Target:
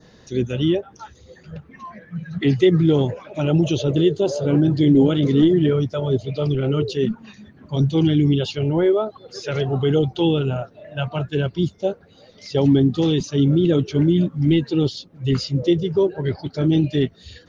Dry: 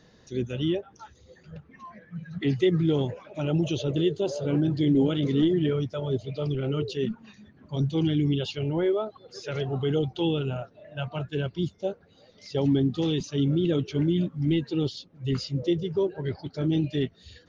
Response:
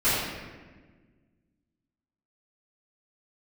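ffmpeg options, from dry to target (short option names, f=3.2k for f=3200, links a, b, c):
-af "adynamicequalizer=threshold=0.00398:dfrequency=2700:dqfactor=1.3:tfrequency=2700:tqfactor=1.3:attack=5:release=100:ratio=0.375:range=2:mode=cutabove:tftype=bell,volume=7.5dB"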